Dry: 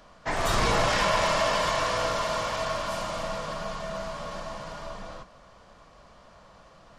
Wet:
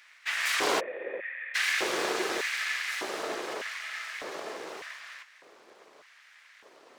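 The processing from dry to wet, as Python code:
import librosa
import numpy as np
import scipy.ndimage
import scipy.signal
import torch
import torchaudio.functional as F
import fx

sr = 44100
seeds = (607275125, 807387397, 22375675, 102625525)

y = np.abs(x)
y = fx.filter_lfo_highpass(y, sr, shape='square', hz=0.83, low_hz=380.0, high_hz=1900.0, q=2.5)
y = fx.formant_cascade(y, sr, vowel='e', at=(0.79, 1.54), fade=0.02)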